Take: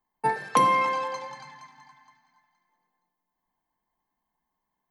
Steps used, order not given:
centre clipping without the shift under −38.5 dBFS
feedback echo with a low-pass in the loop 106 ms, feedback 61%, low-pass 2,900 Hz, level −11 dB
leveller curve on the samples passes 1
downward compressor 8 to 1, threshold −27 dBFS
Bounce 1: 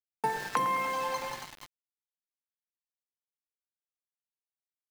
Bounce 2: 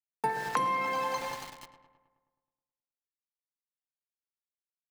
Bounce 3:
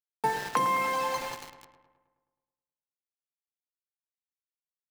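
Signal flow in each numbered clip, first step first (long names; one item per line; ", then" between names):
leveller curve on the samples, then downward compressor, then feedback echo with a low-pass in the loop, then centre clipping without the shift
leveller curve on the samples, then centre clipping without the shift, then feedback echo with a low-pass in the loop, then downward compressor
downward compressor, then centre clipping without the shift, then leveller curve on the samples, then feedback echo with a low-pass in the loop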